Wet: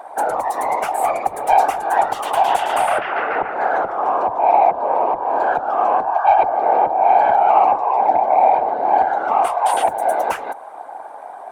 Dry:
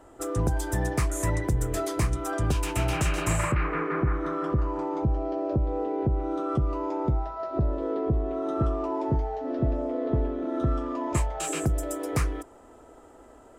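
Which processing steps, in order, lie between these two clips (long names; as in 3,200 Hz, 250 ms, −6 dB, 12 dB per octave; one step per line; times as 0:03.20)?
spectral tilt −1.5 dB per octave
in parallel at −2.5 dB: downward compressor, threshold −28 dBFS, peak gain reduction 13 dB
on the sum: speed change +18%
high-pass with resonance 770 Hz, resonance Q 6.6
soft clipping −8.5 dBFS, distortion −22 dB
random phases in short frames
level +3 dB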